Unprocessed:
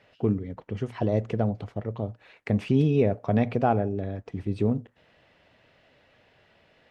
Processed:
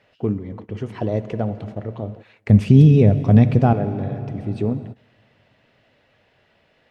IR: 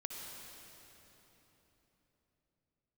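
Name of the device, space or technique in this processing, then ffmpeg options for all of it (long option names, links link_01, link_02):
keyed gated reverb: -filter_complex "[0:a]asettb=1/sr,asplit=3[link_01][link_02][link_03];[link_01]atrim=end=2.494[link_04];[link_02]atrim=start=2.49:end=3.73,asetpts=PTS-STARTPTS,afade=type=in:duration=0.004:curve=qsin,afade=type=out:start_time=1.236:duration=0.004:curve=qsin,bass=frequency=250:gain=13,treble=frequency=4000:gain=8[link_05];[link_03]atrim=start=3.726[link_06];[link_04][link_05]acrossfade=duration=0.004:curve1=hsin:curve2=qsin[link_07];[link_07][link_06]acrossfade=duration=0.004:curve1=qsin:curve2=hsin,asplit=3[link_08][link_09][link_10];[1:a]atrim=start_sample=2205[link_11];[link_09][link_11]afir=irnorm=-1:irlink=0[link_12];[link_10]apad=whole_len=304421[link_13];[link_12][link_13]sidechaingate=range=-24dB:threshold=-44dB:ratio=16:detection=peak,volume=-6.5dB[link_14];[link_08][link_14]amix=inputs=2:normalize=0"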